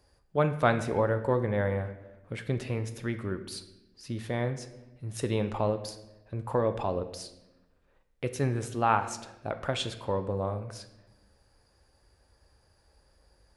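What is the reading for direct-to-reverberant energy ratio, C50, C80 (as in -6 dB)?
8.5 dB, 12.0 dB, 14.0 dB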